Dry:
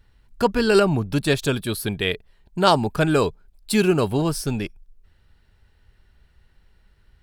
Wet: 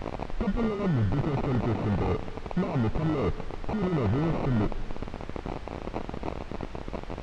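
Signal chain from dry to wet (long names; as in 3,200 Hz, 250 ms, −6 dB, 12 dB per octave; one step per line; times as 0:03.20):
spike at every zero crossing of −10.5 dBFS
low-shelf EQ 110 Hz +8.5 dB
compressor whose output falls as the input rises −22 dBFS, ratio −0.5
in parallel at +1.5 dB: brickwall limiter −19 dBFS, peak gain reduction 14 dB
on the sum: decimation without filtering 27×
soft clipping −20 dBFS, distortion −4 dB
bit-depth reduction 6 bits, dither triangular
head-to-tape spacing loss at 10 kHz 38 dB
on a send at −16.5 dB: convolution reverb RT60 1.8 s, pre-delay 108 ms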